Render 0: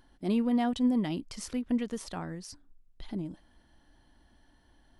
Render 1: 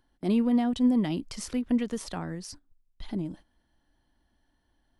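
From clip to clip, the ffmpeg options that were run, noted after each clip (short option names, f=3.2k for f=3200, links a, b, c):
-filter_complex "[0:a]agate=range=-12dB:threshold=-50dB:ratio=16:detection=peak,acrossover=split=390[a][b];[b]acompressor=threshold=-36dB:ratio=6[c];[a][c]amix=inputs=2:normalize=0,volume=3.5dB"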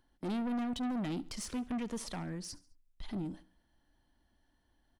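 -af "asoftclip=type=tanh:threshold=-30.5dB,aecho=1:1:70|140|210:0.0944|0.0444|0.0209,volume=-2dB"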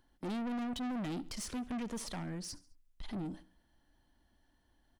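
-af "asoftclip=type=tanh:threshold=-36dB,volume=1.5dB"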